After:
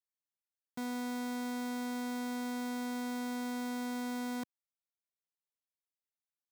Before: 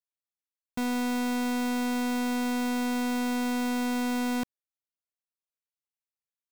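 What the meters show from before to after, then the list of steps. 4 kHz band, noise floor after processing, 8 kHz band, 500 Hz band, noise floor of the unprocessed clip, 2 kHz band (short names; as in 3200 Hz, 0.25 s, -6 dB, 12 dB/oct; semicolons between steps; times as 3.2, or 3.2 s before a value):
-9.0 dB, under -85 dBFS, -8.5 dB, -8.5 dB, under -85 dBFS, -9.5 dB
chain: HPF 150 Hz; bell 2700 Hz -8.5 dB 0.22 oct; gain -8.5 dB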